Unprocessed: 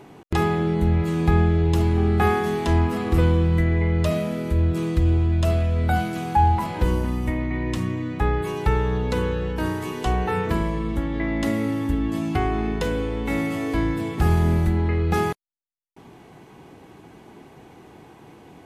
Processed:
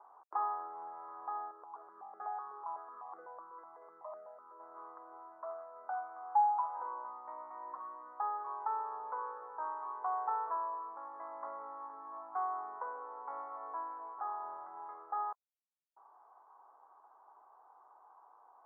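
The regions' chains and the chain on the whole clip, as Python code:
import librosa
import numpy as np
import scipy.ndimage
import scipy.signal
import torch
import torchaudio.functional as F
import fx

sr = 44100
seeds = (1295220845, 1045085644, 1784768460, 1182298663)

y = fx.chain(x, sr, fx.air_absorb(metres=480.0),
    fx.phaser_held(hz=8.0, low_hz=720.0, high_hz=3600.0), at=(1.51, 4.6))
y = scipy.signal.sosfilt(scipy.signal.butter(8, 1200.0, 'lowpass', fs=sr, output='sos'), y)
y = fx.rider(y, sr, range_db=10, speed_s=2.0)
y = scipy.signal.sosfilt(scipy.signal.butter(4, 940.0, 'highpass', fs=sr, output='sos'), y)
y = F.gain(torch.from_numpy(y), -2.5).numpy()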